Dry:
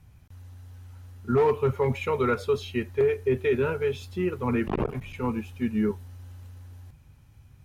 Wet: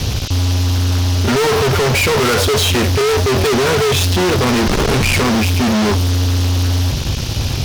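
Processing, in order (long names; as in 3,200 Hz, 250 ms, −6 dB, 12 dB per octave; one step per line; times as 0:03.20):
0:04.69–0:05.21: linear delta modulator 64 kbit/s, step −43 dBFS
brickwall limiter −22 dBFS, peak gain reduction 7 dB
fuzz pedal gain 53 dB, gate −59 dBFS
noise in a band 2,600–6,200 Hz −29 dBFS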